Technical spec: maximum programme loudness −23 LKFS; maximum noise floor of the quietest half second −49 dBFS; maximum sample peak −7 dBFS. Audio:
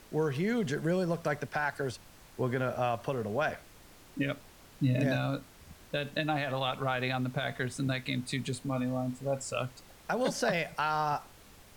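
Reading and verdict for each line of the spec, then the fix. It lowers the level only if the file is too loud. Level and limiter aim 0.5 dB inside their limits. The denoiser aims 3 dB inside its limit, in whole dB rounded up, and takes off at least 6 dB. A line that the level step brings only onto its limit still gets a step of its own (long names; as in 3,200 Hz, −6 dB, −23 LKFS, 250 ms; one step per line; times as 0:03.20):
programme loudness −32.5 LKFS: in spec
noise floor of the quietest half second −55 dBFS: in spec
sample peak −18.0 dBFS: in spec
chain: no processing needed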